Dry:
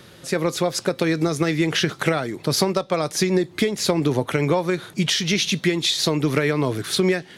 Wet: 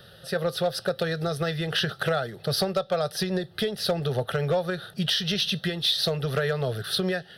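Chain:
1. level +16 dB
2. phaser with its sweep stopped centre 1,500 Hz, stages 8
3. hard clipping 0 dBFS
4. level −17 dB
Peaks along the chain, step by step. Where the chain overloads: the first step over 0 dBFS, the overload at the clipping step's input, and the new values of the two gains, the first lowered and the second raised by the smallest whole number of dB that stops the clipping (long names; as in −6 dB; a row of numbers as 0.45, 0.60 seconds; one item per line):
+8.5, +5.5, 0.0, −17.0 dBFS
step 1, 5.5 dB
step 1 +10 dB, step 4 −11 dB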